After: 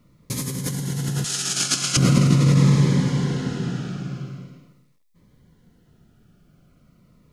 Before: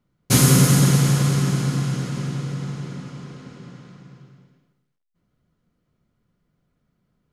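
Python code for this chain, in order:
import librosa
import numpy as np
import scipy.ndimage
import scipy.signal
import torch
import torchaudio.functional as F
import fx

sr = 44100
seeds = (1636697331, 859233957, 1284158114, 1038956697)

y = fx.over_compress(x, sr, threshold_db=-28.0, ratio=-1.0)
y = fx.weighting(y, sr, curve='ITU-R 468', at=(1.24, 1.97))
y = fx.notch_cascade(y, sr, direction='falling', hz=0.42)
y = y * librosa.db_to_amplitude(7.5)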